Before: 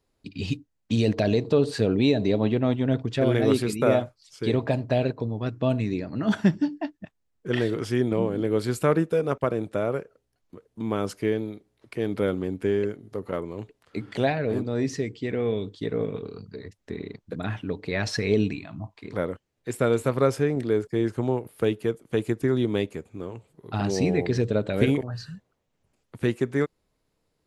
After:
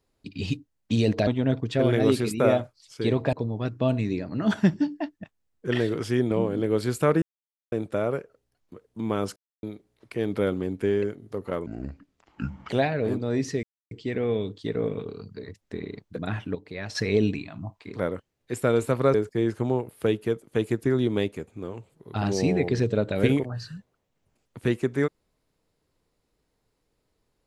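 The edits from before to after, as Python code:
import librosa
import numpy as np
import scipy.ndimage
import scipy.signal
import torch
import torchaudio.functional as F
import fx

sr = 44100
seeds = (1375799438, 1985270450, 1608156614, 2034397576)

y = fx.edit(x, sr, fx.cut(start_s=1.27, length_s=1.42),
    fx.cut(start_s=4.75, length_s=0.39),
    fx.silence(start_s=9.03, length_s=0.5),
    fx.silence(start_s=11.17, length_s=0.27),
    fx.speed_span(start_s=13.47, length_s=0.67, speed=0.65),
    fx.insert_silence(at_s=15.08, length_s=0.28),
    fx.clip_gain(start_s=17.72, length_s=0.4, db=-8.0),
    fx.cut(start_s=20.31, length_s=0.41), tone=tone)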